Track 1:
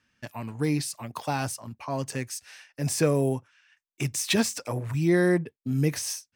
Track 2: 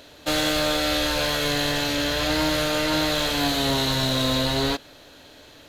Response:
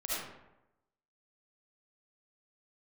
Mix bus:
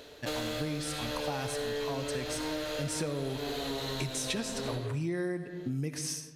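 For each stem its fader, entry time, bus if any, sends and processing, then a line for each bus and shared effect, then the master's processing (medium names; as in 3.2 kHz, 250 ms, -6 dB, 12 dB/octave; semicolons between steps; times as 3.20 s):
-1.5 dB, 0.00 s, send -12.5 dB, low-pass 12 kHz 24 dB/octave
-5.0 dB, 0.00 s, send -13 dB, peaking EQ 440 Hz +12.5 dB 0.22 oct; auto duck -12 dB, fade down 0.70 s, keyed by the first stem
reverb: on, RT60 0.90 s, pre-delay 30 ms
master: compression 6:1, threshold -31 dBFS, peak gain reduction 13.5 dB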